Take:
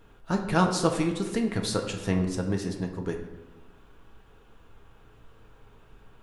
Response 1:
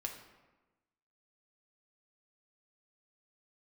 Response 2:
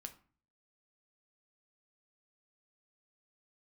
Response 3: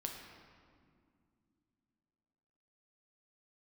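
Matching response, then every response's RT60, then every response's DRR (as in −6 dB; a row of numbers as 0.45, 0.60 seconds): 1; 1.2, 0.40, 2.3 seconds; 1.5, 6.0, 1.0 decibels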